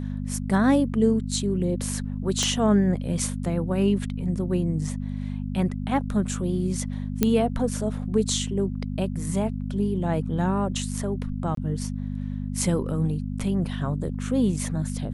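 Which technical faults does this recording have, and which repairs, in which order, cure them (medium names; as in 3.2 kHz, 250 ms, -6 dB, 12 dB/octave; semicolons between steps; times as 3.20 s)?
hum 50 Hz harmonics 5 -30 dBFS
2.43 s: pop -12 dBFS
7.23 s: pop -6 dBFS
11.55–11.57 s: dropout 23 ms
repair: de-click; de-hum 50 Hz, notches 5; interpolate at 11.55 s, 23 ms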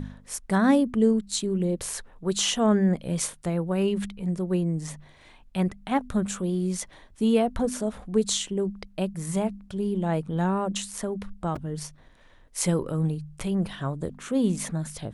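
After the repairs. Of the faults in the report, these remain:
2.43 s: pop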